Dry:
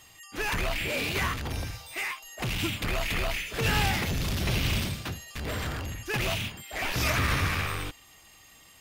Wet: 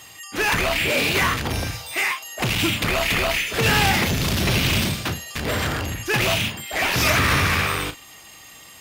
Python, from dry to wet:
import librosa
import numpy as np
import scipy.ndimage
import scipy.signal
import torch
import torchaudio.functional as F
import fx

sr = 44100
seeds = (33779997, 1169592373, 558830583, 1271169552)

p1 = fx.highpass(x, sr, hz=110.0, slope=6)
p2 = np.clip(p1, -10.0 ** (-29.5 / 20.0), 10.0 ** (-29.5 / 20.0))
p3 = p1 + (p2 * 10.0 ** (-4.0 / 20.0))
p4 = fx.doubler(p3, sr, ms=36.0, db=-11.5)
y = p4 * 10.0 ** (6.0 / 20.0)